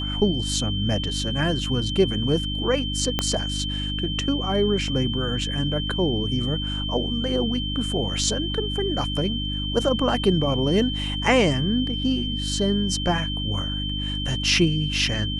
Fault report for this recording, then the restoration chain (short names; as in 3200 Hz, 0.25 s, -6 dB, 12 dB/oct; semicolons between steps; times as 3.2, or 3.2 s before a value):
hum 50 Hz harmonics 6 -29 dBFS
tone 3100 Hz -29 dBFS
3.19 pop -7 dBFS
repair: de-click; notch 3100 Hz, Q 30; de-hum 50 Hz, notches 6